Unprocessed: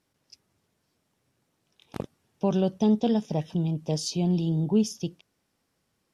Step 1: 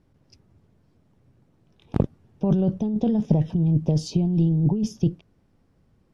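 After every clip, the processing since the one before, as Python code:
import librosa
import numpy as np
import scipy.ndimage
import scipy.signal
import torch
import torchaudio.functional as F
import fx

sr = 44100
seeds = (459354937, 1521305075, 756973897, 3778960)

y = fx.tilt_eq(x, sr, slope=-4.0)
y = fx.over_compress(y, sr, threshold_db=-20.0, ratio=-1.0)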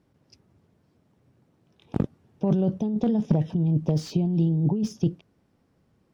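y = fx.highpass(x, sr, hz=140.0, slope=6)
y = fx.slew_limit(y, sr, full_power_hz=59.0)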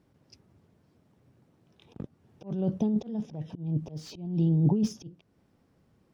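y = fx.auto_swell(x, sr, attack_ms=375.0)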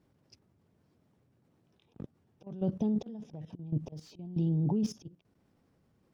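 y = fx.level_steps(x, sr, step_db=14)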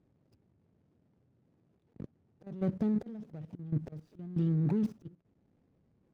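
y = scipy.ndimage.median_filter(x, 41, mode='constant')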